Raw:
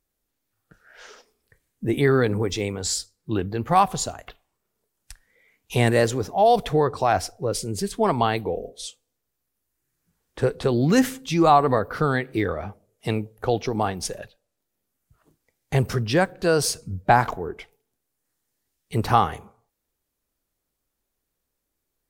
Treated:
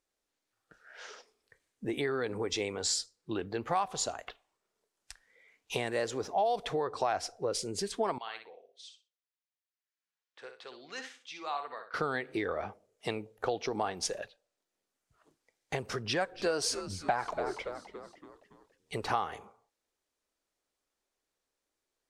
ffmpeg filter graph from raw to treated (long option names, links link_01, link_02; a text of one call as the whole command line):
ffmpeg -i in.wav -filter_complex "[0:a]asettb=1/sr,asplit=3[link_01][link_02][link_03];[link_01]atrim=end=8.184[link_04];[link_02]atrim=start=8.18:end=11.94,asetpts=PTS-STARTPTS,afade=type=in:duration=0.004:curve=qsin,afade=type=out:start_time=3.756:duration=0.004:curve=qsin,lowpass=2900,aderivative,aecho=1:1:62|124|186:0.398|0.0836|0.0176,atrim=end_sample=165816[link_05];[link_03]atrim=start=11.936[link_06];[link_04][link_05]acrossfade=duration=0.004:curve1=hsin:curve2=qsin[link_07];[link_07][link_06]acrossfade=duration=0.004:curve1=qsin:curve2=hsin,asettb=1/sr,asplit=3[link_08][link_09][link_10];[link_08]atrim=end=16.044[link_11];[link_09]atrim=start=16.04:end=19.08,asetpts=PTS-STARTPTS,afade=type=in:duration=0.004:curve=qsin,afade=type=out:start_time=3.036:duration=0.004:curve=qsin,aphaser=in_gain=1:out_gain=1:delay=3.9:decay=0.34:speed=1.1:type=triangular,asplit=6[link_12][link_13][link_14][link_15][link_16][link_17];[link_13]adelay=283,afreqshift=-110,volume=-16dB[link_18];[link_14]adelay=566,afreqshift=-220,volume=-21.5dB[link_19];[link_15]adelay=849,afreqshift=-330,volume=-27dB[link_20];[link_16]adelay=1132,afreqshift=-440,volume=-32.5dB[link_21];[link_17]adelay=1415,afreqshift=-550,volume=-38.1dB[link_22];[link_12][link_18][link_19][link_20][link_21][link_22]amix=inputs=6:normalize=0,atrim=end_sample=134064[link_23];[link_10]atrim=start=19.076[link_24];[link_11][link_23]acrossfade=duration=0.004:curve1=hsin:curve2=qsin[link_25];[link_25][link_24]acrossfade=duration=0.004:curve1=qsin:curve2=hsin,acompressor=threshold=-23dB:ratio=12,lowpass=7400,bass=frequency=250:gain=-13,treble=frequency=4000:gain=1,volume=-2dB" out.wav